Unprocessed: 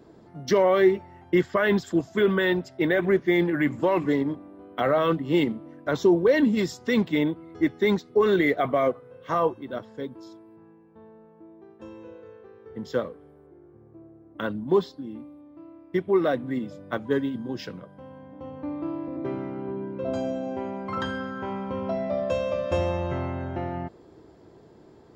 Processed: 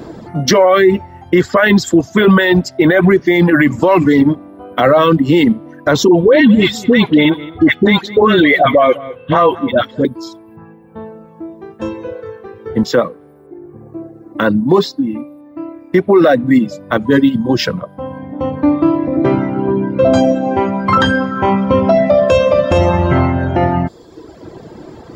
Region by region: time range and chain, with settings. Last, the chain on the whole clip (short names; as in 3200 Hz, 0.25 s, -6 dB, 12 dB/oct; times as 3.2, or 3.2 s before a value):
6.08–10.05 resonant high shelf 4200 Hz -6.5 dB, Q 3 + dispersion highs, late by 66 ms, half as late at 940 Hz + echo 0.202 s -15.5 dB
12.83–16.91 HPF 120 Hz + notch 3200 Hz, Q 9.5
whole clip: reverb removal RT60 1.1 s; notch 410 Hz, Q 12; maximiser +23 dB; gain -1 dB